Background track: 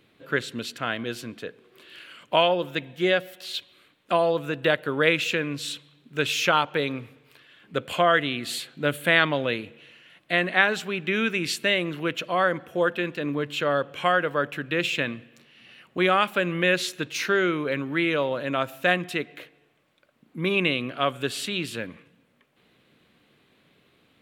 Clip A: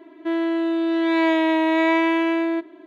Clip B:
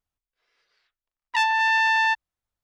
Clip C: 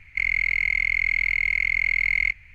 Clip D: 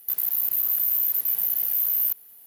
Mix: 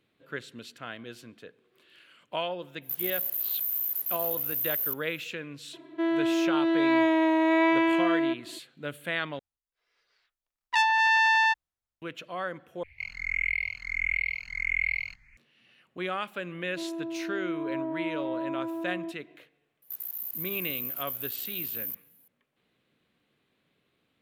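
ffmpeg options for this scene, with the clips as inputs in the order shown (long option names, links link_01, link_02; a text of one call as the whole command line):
ffmpeg -i bed.wav -i cue0.wav -i cue1.wav -i cue2.wav -i cue3.wav -filter_complex "[4:a]asplit=2[link_01][link_02];[1:a]asplit=2[link_03][link_04];[0:a]volume=-11.5dB[link_05];[link_03]aecho=1:1:3:0.31[link_06];[2:a]dynaudnorm=framelen=150:gausssize=7:maxgain=7.5dB[link_07];[3:a]asplit=2[link_08][link_09];[link_09]afreqshift=1.5[link_10];[link_08][link_10]amix=inputs=2:normalize=1[link_11];[link_04]lowpass=frequency=1000:width=0.5412,lowpass=frequency=1000:width=1.3066[link_12];[link_05]asplit=3[link_13][link_14][link_15];[link_13]atrim=end=9.394[link_16];[link_07]atrim=end=2.63,asetpts=PTS-STARTPTS,volume=-8.5dB[link_17];[link_14]atrim=start=12.016:end=12.834[link_18];[link_11]atrim=end=2.54,asetpts=PTS-STARTPTS,volume=-5dB[link_19];[link_15]atrim=start=15.366[link_20];[link_01]atrim=end=2.46,asetpts=PTS-STARTPTS,volume=-7dB,afade=type=in:duration=0.05,afade=type=out:start_time=2.41:duration=0.05,adelay=2810[link_21];[link_06]atrim=end=2.86,asetpts=PTS-STARTPTS,volume=-6dB,afade=type=in:duration=0.004:curve=hsin,afade=type=out:start_time=2.856:duration=0.004:curve=hsin,adelay=252693S[link_22];[link_12]atrim=end=2.86,asetpts=PTS-STARTPTS,volume=-13dB,afade=type=in:duration=0.004:curve=hsin,afade=type=out:start_time=2.856:duration=0.004:curve=hsin,adelay=16510[link_23];[link_02]atrim=end=2.46,asetpts=PTS-STARTPTS,volume=-12dB,afade=type=in:duration=0.004:curve=hsin,afade=type=out:start_time=2.456:duration=0.004:curve=hsin,adelay=19820[link_24];[link_16][link_17]acrossfade=duration=0.004:curve1=hsin:curve2=hsin[link_25];[link_25][link_18]acrossfade=duration=0.004:curve1=hsin:curve2=hsin[link_26];[link_26][link_19]acrossfade=duration=0.004:curve1=hsin:curve2=hsin[link_27];[link_27][link_20]acrossfade=duration=0.004:curve1=hsin:curve2=hsin[link_28];[link_28][link_21][link_22][link_23][link_24]amix=inputs=5:normalize=0" out.wav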